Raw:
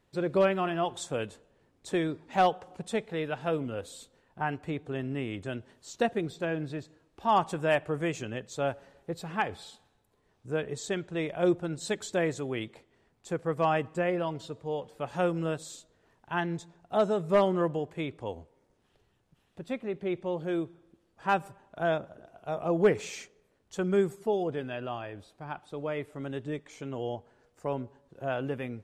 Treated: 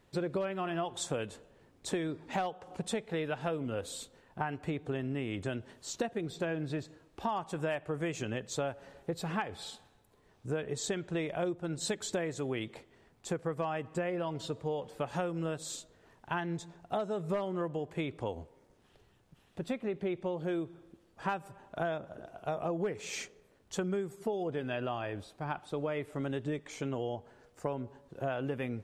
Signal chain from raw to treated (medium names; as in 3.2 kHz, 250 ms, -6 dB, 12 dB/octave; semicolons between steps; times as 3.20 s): compression 12:1, threshold -35 dBFS, peak gain reduction 18 dB; trim +4.5 dB